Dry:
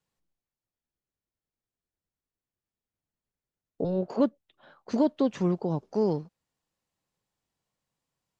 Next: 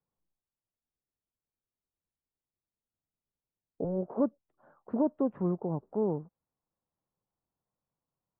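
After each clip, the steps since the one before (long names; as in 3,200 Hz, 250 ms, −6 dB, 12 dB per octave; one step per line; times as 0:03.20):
low-pass filter 1,300 Hz 24 dB per octave
level −4 dB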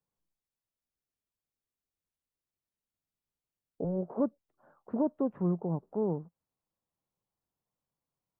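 dynamic equaliser 170 Hz, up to +5 dB, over −48 dBFS, Q 7.5
level −1.5 dB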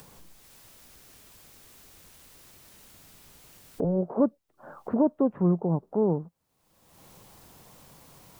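upward compression, threshold −34 dBFS
level +6.5 dB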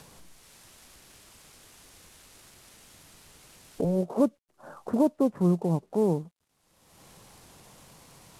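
variable-slope delta modulation 64 kbit/s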